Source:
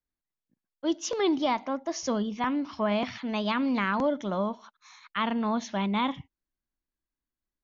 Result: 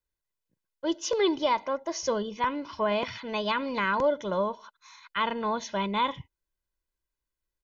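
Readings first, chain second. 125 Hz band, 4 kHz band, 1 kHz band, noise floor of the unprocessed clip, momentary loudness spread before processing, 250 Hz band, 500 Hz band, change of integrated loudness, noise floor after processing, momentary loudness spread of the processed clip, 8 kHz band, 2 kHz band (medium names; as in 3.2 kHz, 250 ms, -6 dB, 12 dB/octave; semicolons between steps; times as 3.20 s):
-4.0 dB, +2.0 dB, +2.0 dB, under -85 dBFS, 6 LU, -5.0 dB, +2.5 dB, 0.0 dB, under -85 dBFS, 7 LU, no reading, +2.0 dB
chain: comb 2 ms, depth 66%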